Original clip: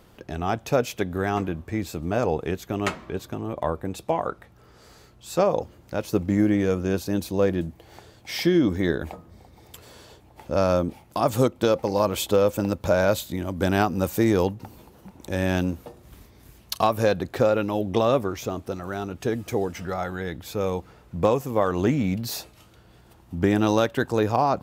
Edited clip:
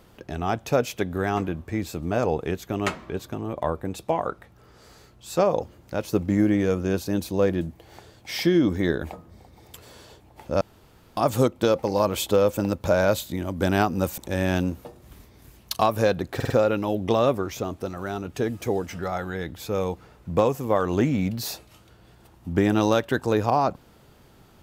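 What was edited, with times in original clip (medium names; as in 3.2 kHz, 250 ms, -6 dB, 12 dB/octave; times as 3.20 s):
10.61–11.17 s: room tone
14.18–15.19 s: delete
17.36 s: stutter 0.05 s, 4 plays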